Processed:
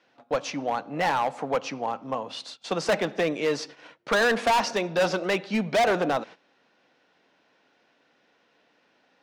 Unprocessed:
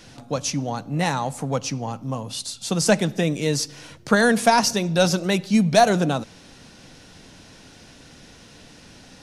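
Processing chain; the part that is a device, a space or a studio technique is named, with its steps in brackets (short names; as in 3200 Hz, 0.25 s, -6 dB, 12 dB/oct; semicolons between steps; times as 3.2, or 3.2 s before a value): walkie-talkie (BPF 430–2500 Hz; hard clip -22 dBFS, distortion -5 dB; gate -45 dBFS, range -16 dB); gain +3.5 dB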